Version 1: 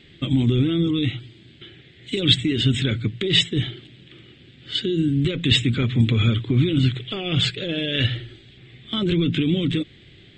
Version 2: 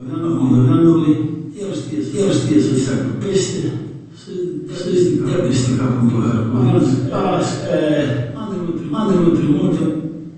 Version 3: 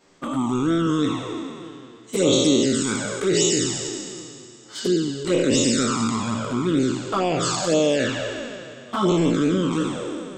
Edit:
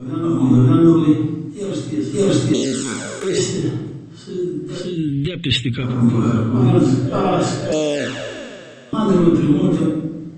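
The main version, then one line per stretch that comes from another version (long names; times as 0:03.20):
2
0:02.54–0:03.38: punch in from 3
0:04.87–0:05.90: punch in from 1, crossfade 0.24 s
0:07.72–0:08.93: punch in from 3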